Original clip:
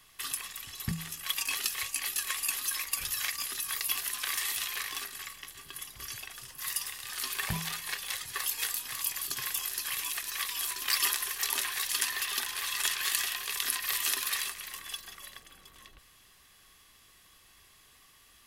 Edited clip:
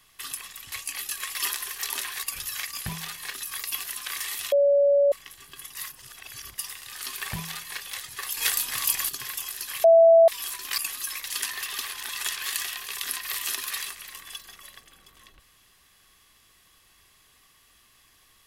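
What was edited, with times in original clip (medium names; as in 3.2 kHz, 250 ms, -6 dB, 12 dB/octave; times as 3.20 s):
0.72–1.79 s: delete
2.42–2.88 s: swap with 10.95–11.83 s
4.69–5.29 s: bleep 567 Hz -16 dBFS
5.92–6.75 s: reverse
7.50–7.98 s: copy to 3.51 s
8.54–9.26 s: gain +8 dB
10.01–10.45 s: bleep 662 Hz -11 dBFS
12.40–12.68 s: reverse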